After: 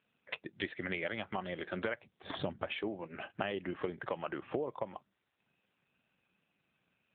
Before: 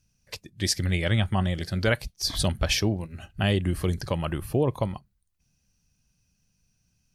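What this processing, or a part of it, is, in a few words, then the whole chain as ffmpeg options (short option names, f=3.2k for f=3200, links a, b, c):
voicemail: -filter_complex "[0:a]asettb=1/sr,asplit=3[a][b][c];[a]atrim=end=1.944[d];[b]atrim=start=1.94:end=2.72,asetpts=PTS-STARTPTS,afade=t=in:d=0.004:c=qsin,afade=t=out:st=0.776:d=0.004:c=qsin,aemphasis=mode=reproduction:type=bsi[e];[c]atrim=start=2.716[f];[d][e]acrossfade=d=0.004:c1=hsin:c2=qsin[g];[g][f]acrossfade=d=0.004:c1=qsin:c2=hsin,highpass=390,lowpass=2.6k,acompressor=threshold=-42dB:ratio=8,volume=9dB" -ar 8000 -c:a libopencore_amrnb -b:a 7400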